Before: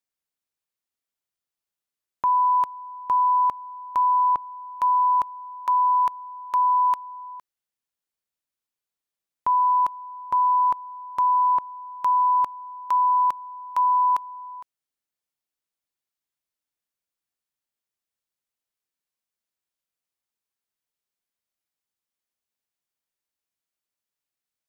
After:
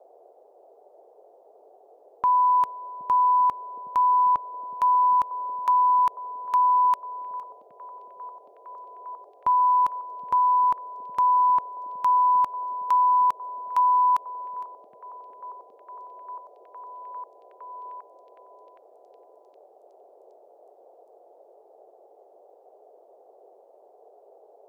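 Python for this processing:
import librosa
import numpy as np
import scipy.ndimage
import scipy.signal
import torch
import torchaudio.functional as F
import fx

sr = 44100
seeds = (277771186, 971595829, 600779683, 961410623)

y = fx.dmg_noise_band(x, sr, seeds[0], low_hz=390.0, high_hz=770.0, level_db=-54.0)
y = fx.echo_stepped(y, sr, ms=768, hz=190.0, octaves=0.7, feedback_pct=70, wet_db=-6)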